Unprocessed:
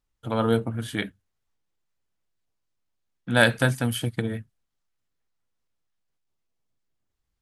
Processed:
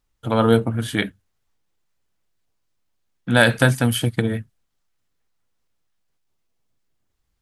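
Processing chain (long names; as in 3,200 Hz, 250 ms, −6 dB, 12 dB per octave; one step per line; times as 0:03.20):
boost into a limiter +7.5 dB
level −1 dB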